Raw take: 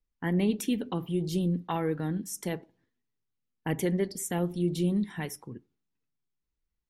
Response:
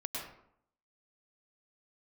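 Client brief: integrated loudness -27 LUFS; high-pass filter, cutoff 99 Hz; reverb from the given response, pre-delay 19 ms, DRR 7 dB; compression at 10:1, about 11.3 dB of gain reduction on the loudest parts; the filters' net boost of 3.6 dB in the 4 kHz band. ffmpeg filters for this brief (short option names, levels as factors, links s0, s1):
-filter_complex "[0:a]highpass=99,equalizer=f=4000:t=o:g=5,acompressor=threshold=0.02:ratio=10,asplit=2[s0][s1];[1:a]atrim=start_sample=2205,adelay=19[s2];[s1][s2]afir=irnorm=-1:irlink=0,volume=0.355[s3];[s0][s3]amix=inputs=2:normalize=0,volume=3.76"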